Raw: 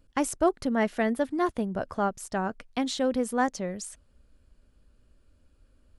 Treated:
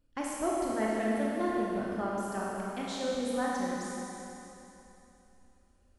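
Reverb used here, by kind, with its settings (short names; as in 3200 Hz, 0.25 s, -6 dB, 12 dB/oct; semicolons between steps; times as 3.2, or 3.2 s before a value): Schroeder reverb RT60 3.1 s, combs from 25 ms, DRR -5 dB; gain -10.5 dB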